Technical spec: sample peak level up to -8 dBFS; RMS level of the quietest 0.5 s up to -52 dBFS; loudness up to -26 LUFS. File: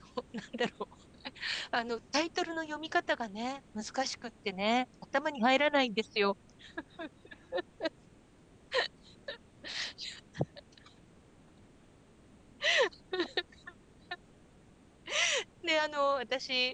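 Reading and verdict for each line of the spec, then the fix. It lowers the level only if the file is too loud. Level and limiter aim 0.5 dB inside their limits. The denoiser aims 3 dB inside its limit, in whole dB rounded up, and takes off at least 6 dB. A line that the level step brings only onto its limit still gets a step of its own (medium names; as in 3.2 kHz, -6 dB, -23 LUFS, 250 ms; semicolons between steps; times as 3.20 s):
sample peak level -14.5 dBFS: pass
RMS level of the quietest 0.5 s -60 dBFS: pass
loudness -33.0 LUFS: pass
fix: none needed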